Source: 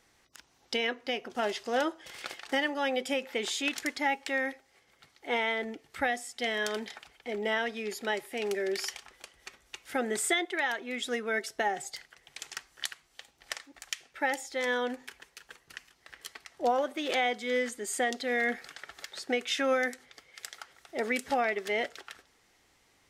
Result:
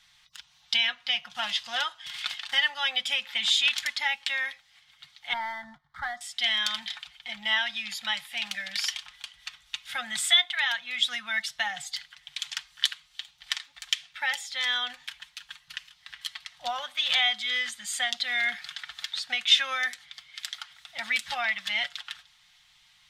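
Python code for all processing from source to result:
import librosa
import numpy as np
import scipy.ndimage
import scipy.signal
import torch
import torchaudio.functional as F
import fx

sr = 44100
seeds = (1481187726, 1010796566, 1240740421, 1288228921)

y = fx.chain(x, sr, fx.lowpass(hz=1600.0, slope=12),
    fx.leveller(passes=1),
    fx.fixed_phaser(hz=1100.0, stages=4), at=(5.33, 6.21))
y = scipy.signal.sosfilt(scipy.signal.cheby1(2, 1.0, [140.0, 1000.0], 'bandstop', fs=sr, output='sos'), y)
y = fx.peak_eq(y, sr, hz=3500.0, db=14.0, octaves=1.0)
y = y + 0.44 * np.pad(y, (int(5.6 * sr / 1000.0), 0))[:len(y)]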